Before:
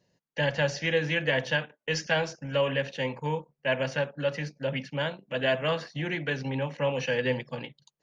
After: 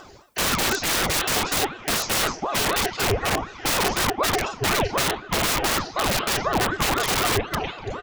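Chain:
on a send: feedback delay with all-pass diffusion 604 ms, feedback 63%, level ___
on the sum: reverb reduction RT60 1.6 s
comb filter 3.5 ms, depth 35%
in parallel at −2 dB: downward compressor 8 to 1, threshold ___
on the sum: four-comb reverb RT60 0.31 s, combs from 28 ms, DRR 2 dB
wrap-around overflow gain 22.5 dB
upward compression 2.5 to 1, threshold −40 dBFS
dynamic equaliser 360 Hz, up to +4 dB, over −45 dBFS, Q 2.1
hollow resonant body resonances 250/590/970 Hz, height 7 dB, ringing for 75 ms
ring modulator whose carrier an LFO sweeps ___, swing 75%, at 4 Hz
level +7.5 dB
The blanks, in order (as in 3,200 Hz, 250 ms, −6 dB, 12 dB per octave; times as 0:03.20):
−15 dB, −37 dBFS, 560 Hz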